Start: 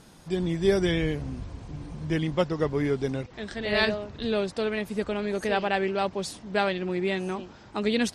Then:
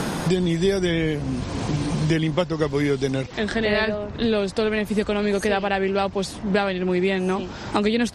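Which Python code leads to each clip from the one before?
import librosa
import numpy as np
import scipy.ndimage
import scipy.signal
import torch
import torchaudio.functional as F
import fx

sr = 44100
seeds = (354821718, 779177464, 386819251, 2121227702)

y = fx.band_squash(x, sr, depth_pct=100)
y = y * librosa.db_to_amplitude(4.0)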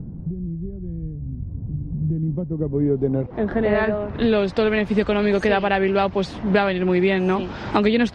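y = fx.filter_sweep_lowpass(x, sr, from_hz=110.0, to_hz=3300.0, start_s=1.86, end_s=4.39, q=0.76)
y = y * librosa.db_to_amplitude(3.0)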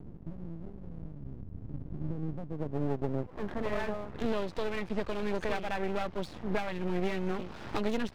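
y = np.maximum(x, 0.0)
y = y * librosa.db_to_amplitude(-9.0)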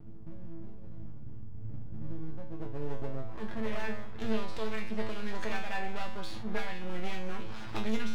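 y = fx.peak_eq(x, sr, hz=410.0, db=-6.0, octaves=2.5)
y = fx.comb_fb(y, sr, f0_hz=110.0, decay_s=0.4, harmonics='all', damping=0.0, mix_pct=90)
y = fx.sustainer(y, sr, db_per_s=34.0)
y = y * librosa.db_to_amplitude(10.5)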